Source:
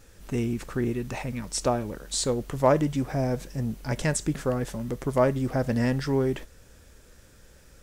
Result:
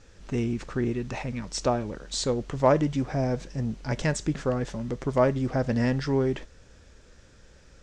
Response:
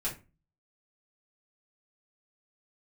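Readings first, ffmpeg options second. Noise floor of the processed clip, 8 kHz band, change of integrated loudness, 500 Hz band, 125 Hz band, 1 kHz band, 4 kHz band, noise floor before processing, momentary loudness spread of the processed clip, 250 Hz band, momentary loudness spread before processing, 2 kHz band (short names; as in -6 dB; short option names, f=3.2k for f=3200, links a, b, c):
-54 dBFS, -4.5 dB, 0.0 dB, 0.0 dB, 0.0 dB, 0.0 dB, 0.0 dB, -54 dBFS, 8 LU, 0.0 dB, 8 LU, 0.0 dB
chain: -af "lowpass=f=6.9k:w=0.5412,lowpass=f=6.9k:w=1.3066"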